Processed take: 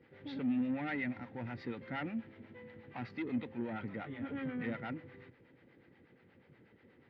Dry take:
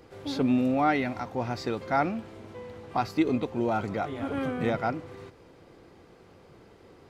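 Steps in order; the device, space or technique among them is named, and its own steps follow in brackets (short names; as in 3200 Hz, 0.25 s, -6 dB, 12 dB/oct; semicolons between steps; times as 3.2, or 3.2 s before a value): guitar amplifier with harmonic tremolo (harmonic tremolo 8.3 Hz, depth 70%, crossover 560 Hz; soft clip -27 dBFS, distortion -12 dB; speaker cabinet 93–3400 Hz, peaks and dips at 130 Hz +4 dB, 240 Hz +6 dB, 400 Hz -4 dB, 690 Hz -8 dB, 1100 Hz -9 dB, 1900 Hz +9 dB); gain -6 dB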